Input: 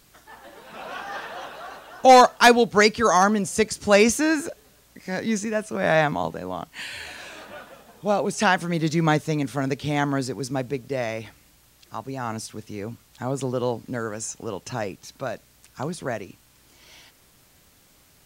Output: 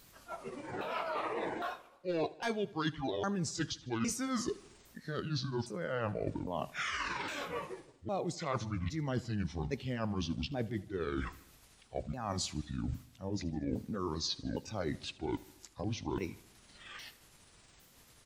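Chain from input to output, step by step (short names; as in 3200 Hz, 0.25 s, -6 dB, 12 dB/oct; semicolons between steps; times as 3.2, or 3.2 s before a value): repeated pitch sweeps -11 st, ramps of 0.809 s; reverse; compressor 10:1, threshold -36 dBFS, peak gain reduction 26 dB; reverse; spectral noise reduction 7 dB; feedback echo 77 ms, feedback 58%, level -21 dB; gain +3.5 dB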